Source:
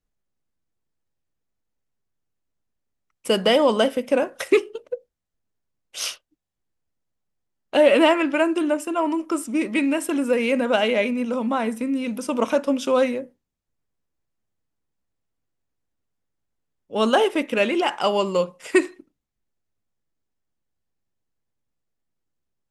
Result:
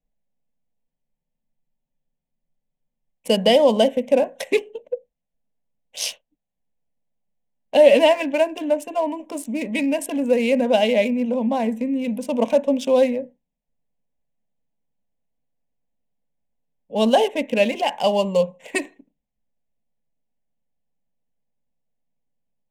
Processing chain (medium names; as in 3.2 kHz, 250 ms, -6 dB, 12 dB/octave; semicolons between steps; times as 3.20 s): local Wiener filter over 9 samples; static phaser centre 350 Hz, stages 6; spectral freeze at 0.86 s, 2.26 s; trim +4 dB